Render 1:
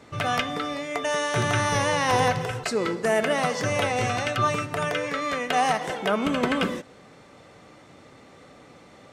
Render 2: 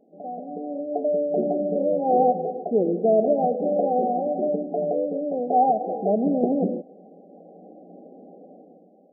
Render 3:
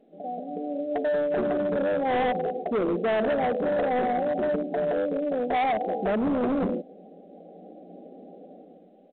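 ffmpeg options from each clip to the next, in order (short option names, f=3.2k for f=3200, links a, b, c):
-af "afftfilt=real='re*between(b*sr/4096,170,810)':imag='im*between(b*sr/4096,170,810)':win_size=4096:overlap=0.75,dynaudnorm=f=180:g=9:m=14dB,volume=-7dB"
-af "aresample=8000,asoftclip=type=hard:threshold=-22dB,aresample=44100" -ar 8000 -c:a pcm_mulaw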